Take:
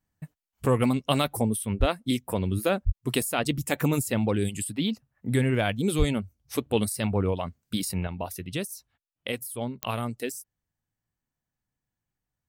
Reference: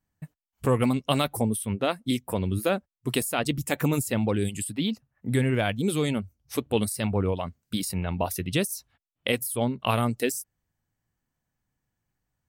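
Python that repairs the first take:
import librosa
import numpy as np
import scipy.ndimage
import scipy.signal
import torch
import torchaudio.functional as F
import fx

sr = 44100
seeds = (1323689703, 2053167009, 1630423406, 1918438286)

y = fx.fix_declick_ar(x, sr, threshold=10.0)
y = fx.fix_deplosive(y, sr, at_s=(1.79, 2.85, 5.98))
y = fx.gain(y, sr, db=fx.steps((0.0, 0.0), (8.07, 6.0)))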